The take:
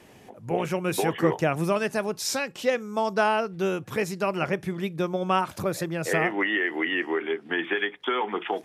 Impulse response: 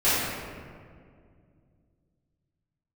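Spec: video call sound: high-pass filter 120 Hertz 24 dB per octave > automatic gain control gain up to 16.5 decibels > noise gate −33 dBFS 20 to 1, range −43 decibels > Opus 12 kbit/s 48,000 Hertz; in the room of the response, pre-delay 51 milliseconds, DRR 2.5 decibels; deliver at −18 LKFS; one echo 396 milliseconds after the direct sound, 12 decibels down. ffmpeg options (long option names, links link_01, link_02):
-filter_complex "[0:a]aecho=1:1:396:0.251,asplit=2[link_01][link_02];[1:a]atrim=start_sample=2205,adelay=51[link_03];[link_02][link_03]afir=irnorm=-1:irlink=0,volume=-19.5dB[link_04];[link_01][link_04]amix=inputs=2:normalize=0,highpass=frequency=120:width=0.5412,highpass=frequency=120:width=1.3066,dynaudnorm=maxgain=16.5dB,agate=range=-43dB:threshold=-33dB:ratio=20,volume=7dB" -ar 48000 -c:a libopus -b:a 12k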